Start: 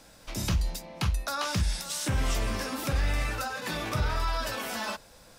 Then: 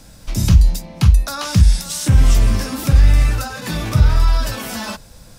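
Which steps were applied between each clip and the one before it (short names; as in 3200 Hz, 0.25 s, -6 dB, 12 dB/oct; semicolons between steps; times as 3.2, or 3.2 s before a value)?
tone controls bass +13 dB, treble +5 dB; gain +4.5 dB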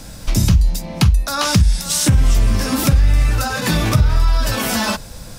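compressor 3:1, threshold -21 dBFS, peak gain reduction 12.5 dB; gain +8 dB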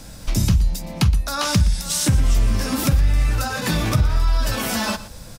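echo 0.119 s -16.5 dB; gain -4 dB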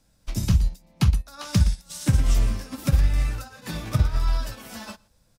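upward expander 2.5:1, over -29 dBFS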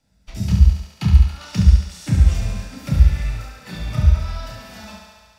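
thinning echo 70 ms, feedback 78%, high-pass 220 Hz, level -5 dB; reverb RT60 0.10 s, pre-delay 28 ms, DRR 3 dB; gain -9.5 dB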